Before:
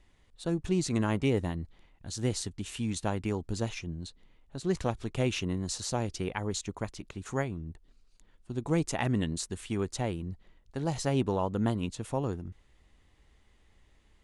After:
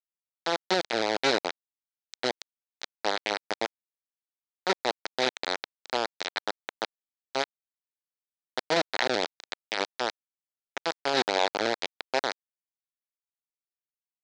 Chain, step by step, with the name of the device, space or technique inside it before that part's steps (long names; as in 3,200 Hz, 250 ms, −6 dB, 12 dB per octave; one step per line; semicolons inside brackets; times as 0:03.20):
hand-held game console (bit reduction 4 bits; loudspeaker in its box 470–5,400 Hz, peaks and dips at 1,100 Hz −8 dB, 2,800 Hz −6 dB, 4,000 Hz +5 dB)
level +6 dB